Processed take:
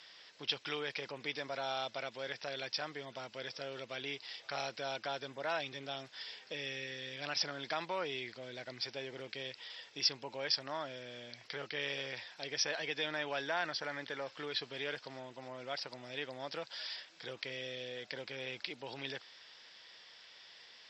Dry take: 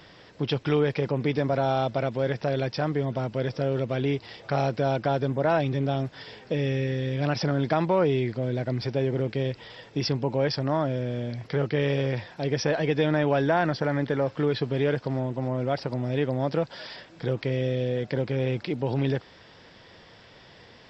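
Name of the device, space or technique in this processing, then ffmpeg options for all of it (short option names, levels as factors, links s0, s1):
piezo pickup straight into a mixer: -af "lowpass=5300,aderivative,volume=2"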